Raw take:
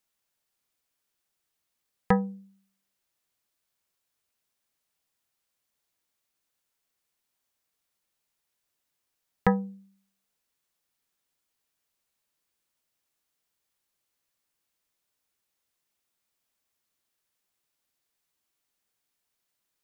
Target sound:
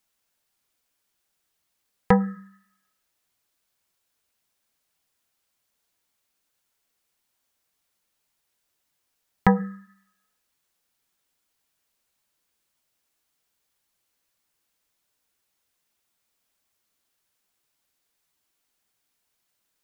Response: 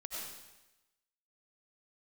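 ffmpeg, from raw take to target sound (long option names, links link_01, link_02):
-filter_complex "[0:a]flanger=delay=0.9:depth=3.5:regen=-64:speed=1.8:shape=sinusoidal,asplit=2[link_01][link_02];[link_02]asuperpass=centerf=1500:order=8:qfactor=2.2[link_03];[1:a]atrim=start_sample=2205[link_04];[link_03][link_04]afir=irnorm=-1:irlink=0,volume=-13dB[link_05];[link_01][link_05]amix=inputs=2:normalize=0,volume=9dB"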